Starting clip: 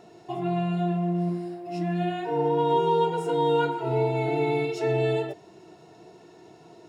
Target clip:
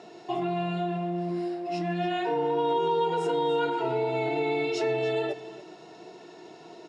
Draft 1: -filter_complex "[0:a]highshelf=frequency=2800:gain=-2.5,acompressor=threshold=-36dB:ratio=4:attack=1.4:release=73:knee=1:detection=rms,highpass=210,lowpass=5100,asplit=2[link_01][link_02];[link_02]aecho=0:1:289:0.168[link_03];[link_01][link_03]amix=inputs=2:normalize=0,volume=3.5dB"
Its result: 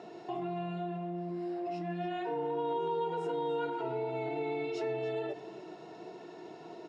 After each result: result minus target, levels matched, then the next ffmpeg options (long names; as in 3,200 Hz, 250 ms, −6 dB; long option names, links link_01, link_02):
downward compressor: peak gain reduction +7 dB; 4,000 Hz band −4.5 dB
-filter_complex "[0:a]highshelf=frequency=2800:gain=-2.5,acompressor=threshold=-26dB:ratio=4:attack=1.4:release=73:knee=1:detection=rms,highpass=210,lowpass=5100,asplit=2[link_01][link_02];[link_02]aecho=0:1:289:0.168[link_03];[link_01][link_03]amix=inputs=2:normalize=0,volume=3.5dB"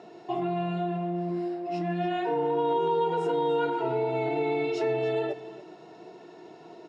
4,000 Hz band −4.5 dB
-filter_complex "[0:a]highshelf=frequency=2800:gain=6.5,acompressor=threshold=-26dB:ratio=4:attack=1.4:release=73:knee=1:detection=rms,highpass=210,lowpass=5100,asplit=2[link_01][link_02];[link_02]aecho=0:1:289:0.168[link_03];[link_01][link_03]amix=inputs=2:normalize=0,volume=3.5dB"